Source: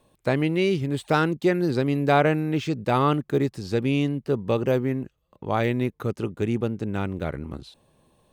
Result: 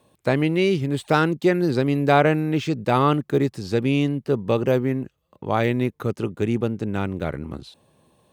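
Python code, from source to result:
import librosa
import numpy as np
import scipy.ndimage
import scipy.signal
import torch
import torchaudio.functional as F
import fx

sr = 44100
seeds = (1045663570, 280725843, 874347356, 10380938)

y = scipy.signal.sosfilt(scipy.signal.butter(2, 71.0, 'highpass', fs=sr, output='sos'), x)
y = F.gain(torch.from_numpy(y), 2.5).numpy()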